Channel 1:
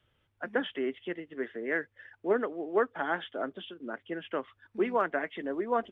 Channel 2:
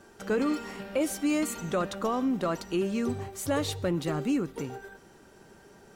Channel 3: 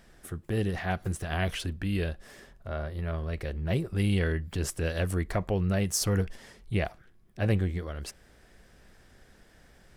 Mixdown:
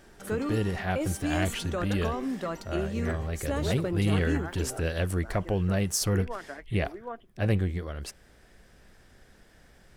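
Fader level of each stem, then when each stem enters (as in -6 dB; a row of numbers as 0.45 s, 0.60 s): -10.0 dB, -4.0 dB, +0.5 dB; 1.35 s, 0.00 s, 0.00 s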